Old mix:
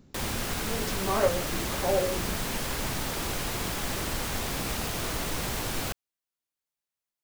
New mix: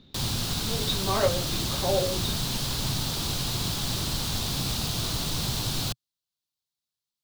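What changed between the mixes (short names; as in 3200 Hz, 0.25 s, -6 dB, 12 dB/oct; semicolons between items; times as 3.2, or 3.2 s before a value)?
speech: add synth low-pass 3700 Hz, resonance Q 15; background: add ten-band EQ 125 Hz +9 dB, 500 Hz -5 dB, 2000 Hz -9 dB, 4000 Hz +11 dB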